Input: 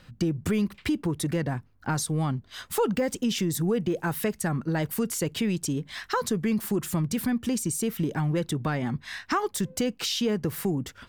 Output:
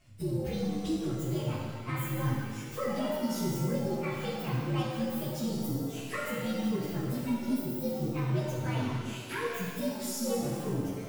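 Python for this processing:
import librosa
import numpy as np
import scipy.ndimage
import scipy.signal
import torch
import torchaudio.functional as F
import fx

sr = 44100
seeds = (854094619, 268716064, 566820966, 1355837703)

y = fx.partial_stretch(x, sr, pct=123)
y = fx.rev_shimmer(y, sr, seeds[0], rt60_s=1.6, semitones=7, shimmer_db=-8, drr_db=-3.0)
y = y * librosa.db_to_amplitude(-7.0)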